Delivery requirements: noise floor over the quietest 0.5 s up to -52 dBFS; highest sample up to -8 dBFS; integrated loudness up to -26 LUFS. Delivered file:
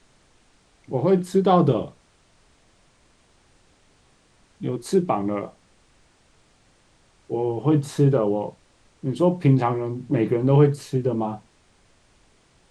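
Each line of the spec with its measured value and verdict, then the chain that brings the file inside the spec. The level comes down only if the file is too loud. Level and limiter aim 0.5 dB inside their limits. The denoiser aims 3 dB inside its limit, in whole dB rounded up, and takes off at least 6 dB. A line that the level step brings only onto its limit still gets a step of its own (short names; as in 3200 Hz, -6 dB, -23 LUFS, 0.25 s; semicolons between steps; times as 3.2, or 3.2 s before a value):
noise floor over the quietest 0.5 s -59 dBFS: OK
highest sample -5.0 dBFS: fail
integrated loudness -22.0 LUFS: fail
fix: gain -4.5 dB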